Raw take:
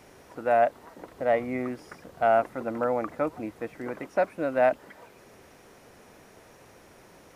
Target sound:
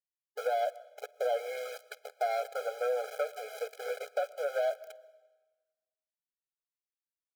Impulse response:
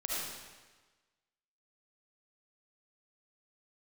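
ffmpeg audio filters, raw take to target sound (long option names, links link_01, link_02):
-filter_complex "[0:a]equalizer=frequency=190:width=2.1:gain=11.5,agate=range=-33dB:threshold=-40dB:ratio=3:detection=peak,bandreject=frequency=72.68:width_type=h:width=4,bandreject=frequency=145.36:width_type=h:width=4,bandreject=frequency=218.04:width_type=h:width=4,asoftclip=type=tanh:threshold=-24dB,asplit=2[link_01][link_02];[link_02]adelay=14,volume=-7dB[link_03];[link_01][link_03]amix=inputs=2:normalize=0,aeval=exprs='val(0)*gte(abs(val(0)),0.0133)':channel_layout=same,acompressor=threshold=-33dB:ratio=6,asplit=2[link_04][link_05];[1:a]atrim=start_sample=2205,adelay=51[link_06];[link_05][link_06]afir=irnorm=-1:irlink=0,volume=-24dB[link_07];[link_04][link_07]amix=inputs=2:normalize=0,afftfilt=real='re*eq(mod(floor(b*sr/1024/420),2),1)':imag='im*eq(mod(floor(b*sr/1024/420),2),1)':win_size=1024:overlap=0.75,volume=5.5dB"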